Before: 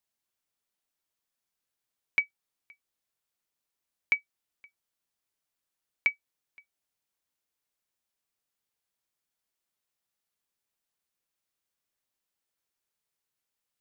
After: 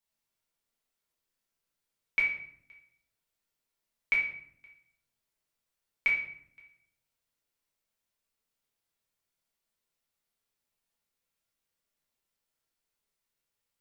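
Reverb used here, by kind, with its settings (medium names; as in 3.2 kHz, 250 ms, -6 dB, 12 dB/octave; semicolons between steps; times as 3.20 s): simulated room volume 130 m³, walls mixed, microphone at 1.6 m; trim -5 dB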